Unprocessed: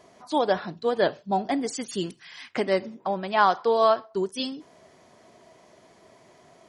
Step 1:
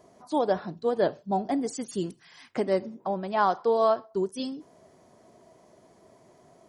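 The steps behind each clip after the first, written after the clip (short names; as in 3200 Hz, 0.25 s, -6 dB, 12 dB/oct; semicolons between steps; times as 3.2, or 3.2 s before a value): bell 2700 Hz -10 dB 2.4 oct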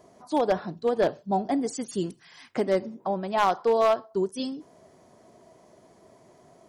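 one-sided fold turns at -16 dBFS; gain +1.5 dB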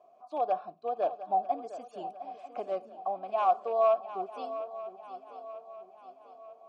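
vowel filter a; swung echo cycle 0.942 s, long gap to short 3:1, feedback 45%, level -13 dB; gain +2.5 dB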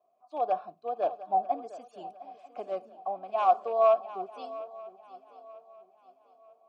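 three-band expander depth 40%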